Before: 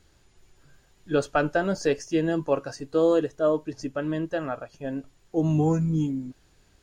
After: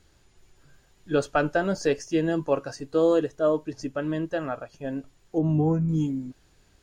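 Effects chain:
0:05.38–0:05.89: low-pass filter 1,000 Hz 6 dB per octave

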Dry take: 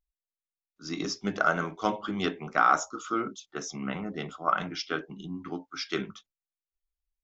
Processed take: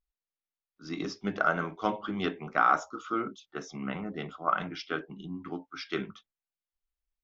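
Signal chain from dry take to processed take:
low-pass filter 3,800 Hz 12 dB per octave
level −1.5 dB

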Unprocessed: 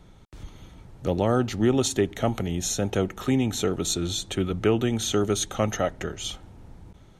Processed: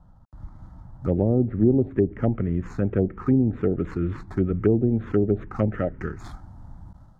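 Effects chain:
running median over 15 samples
parametric band 10,000 Hz −11.5 dB 2.5 octaves, from 0:05.56 −5 dB
treble cut that deepens with the level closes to 450 Hz, closed at −18.5 dBFS
automatic gain control gain up to 4.5 dB
phaser swept by the level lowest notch 390 Hz, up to 1,500 Hz, full sweep at −14 dBFS

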